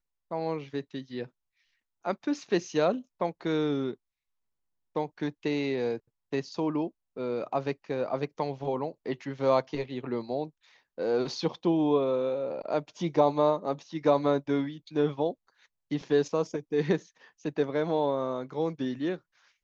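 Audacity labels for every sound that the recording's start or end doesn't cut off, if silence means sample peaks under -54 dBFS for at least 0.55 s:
2.040000	3.950000	sound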